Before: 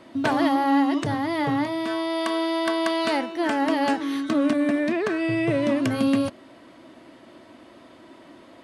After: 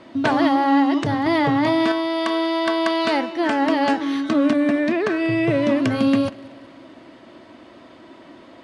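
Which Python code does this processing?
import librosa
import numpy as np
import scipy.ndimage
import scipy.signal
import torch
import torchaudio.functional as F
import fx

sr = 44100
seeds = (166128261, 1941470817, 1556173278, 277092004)

y = scipy.signal.sosfilt(scipy.signal.butter(2, 6500.0, 'lowpass', fs=sr, output='sos'), x)
y = fx.echo_feedback(y, sr, ms=190, feedback_pct=58, wet_db=-22.5)
y = fx.env_flatten(y, sr, amount_pct=100, at=(1.26, 1.92))
y = F.gain(torch.from_numpy(y), 3.5).numpy()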